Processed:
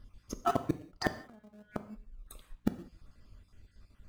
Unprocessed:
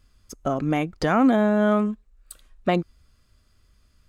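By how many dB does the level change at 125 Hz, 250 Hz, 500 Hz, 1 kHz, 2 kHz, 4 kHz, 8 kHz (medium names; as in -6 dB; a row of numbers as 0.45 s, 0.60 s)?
-13.0 dB, -16.5 dB, -16.0 dB, -11.5 dB, -12.5 dB, -9.0 dB, no reading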